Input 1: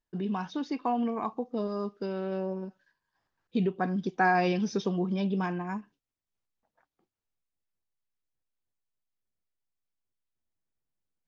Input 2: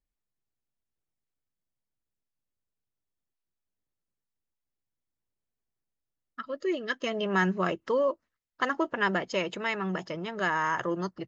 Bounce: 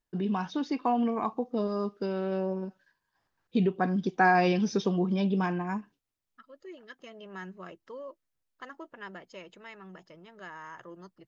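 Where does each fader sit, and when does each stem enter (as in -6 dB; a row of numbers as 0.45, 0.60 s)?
+2.0, -16.5 dB; 0.00, 0.00 s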